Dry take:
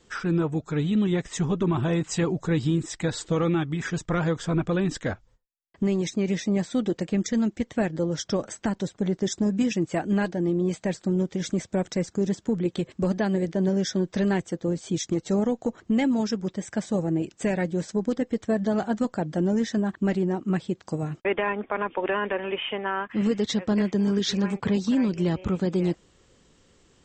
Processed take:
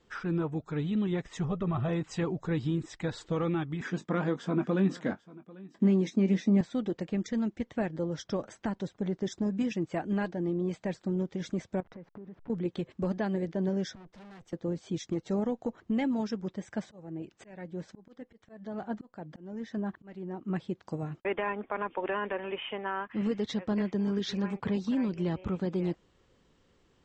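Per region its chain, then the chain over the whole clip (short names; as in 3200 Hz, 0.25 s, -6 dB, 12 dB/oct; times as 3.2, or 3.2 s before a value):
1.44–1.89 high shelf 3900 Hz -7 dB + comb 1.6 ms, depth 62%
3.81–6.61 resonant high-pass 220 Hz, resonance Q 2.6 + doubler 21 ms -11 dB + echo 0.793 s -21 dB
11.8–12.5 level-crossing sampler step -40.5 dBFS + LPF 1800 Hz + compressor, threshold -37 dBFS
13.95–14.53 tube stage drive 42 dB, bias 0.65 + three-band expander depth 70%
16.83–20.56 high shelf 3700 Hz -7 dB + auto swell 0.568 s + mismatched tape noise reduction encoder only
whole clip: Bessel low-pass 4000 Hz, order 2; bell 930 Hz +2 dB; gain -6.5 dB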